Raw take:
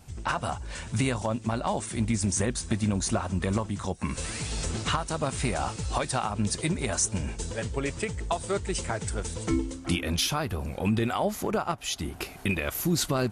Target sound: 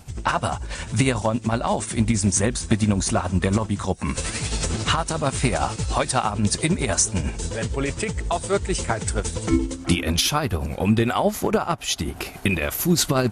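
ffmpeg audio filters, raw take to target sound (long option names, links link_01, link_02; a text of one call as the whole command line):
ffmpeg -i in.wav -af "tremolo=f=11:d=0.49,volume=8.5dB" out.wav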